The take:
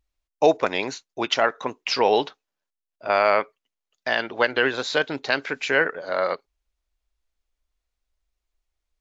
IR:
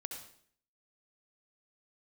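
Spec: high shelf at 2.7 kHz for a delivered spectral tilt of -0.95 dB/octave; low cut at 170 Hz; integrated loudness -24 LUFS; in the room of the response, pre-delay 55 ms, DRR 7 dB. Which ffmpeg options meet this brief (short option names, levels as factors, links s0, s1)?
-filter_complex "[0:a]highpass=170,highshelf=f=2700:g=-8.5,asplit=2[s0][s1];[1:a]atrim=start_sample=2205,adelay=55[s2];[s1][s2]afir=irnorm=-1:irlink=0,volume=0.531[s3];[s0][s3]amix=inputs=2:normalize=0"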